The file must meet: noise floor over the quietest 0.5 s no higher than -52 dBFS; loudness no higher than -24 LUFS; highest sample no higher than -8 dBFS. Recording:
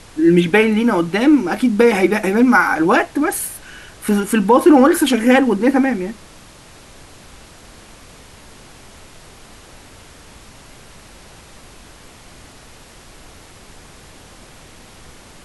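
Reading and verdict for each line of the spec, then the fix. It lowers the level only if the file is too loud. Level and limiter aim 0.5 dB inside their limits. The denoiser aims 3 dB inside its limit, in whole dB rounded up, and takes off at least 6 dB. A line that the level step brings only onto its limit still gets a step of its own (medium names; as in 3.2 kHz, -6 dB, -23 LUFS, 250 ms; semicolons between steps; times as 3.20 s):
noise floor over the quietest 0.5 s -42 dBFS: fail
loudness -14.5 LUFS: fail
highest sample -1.5 dBFS: fail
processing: noise reduction 6 dB, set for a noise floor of -42 dBFS; trim -10 dB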